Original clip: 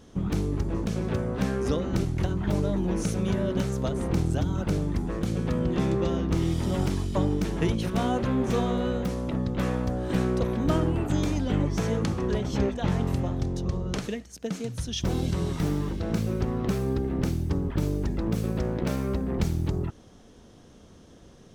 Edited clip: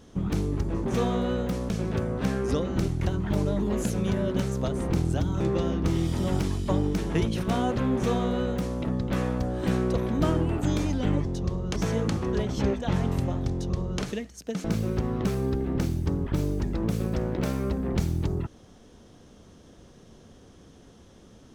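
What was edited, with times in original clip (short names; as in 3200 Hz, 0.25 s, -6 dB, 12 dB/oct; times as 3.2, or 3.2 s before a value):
2.79–3.11 speed 113%
4.61–5.87 cut
8.42–9.25 copy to 0.86
13.47–13.98 copy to 11.72
14.6–16.08 cut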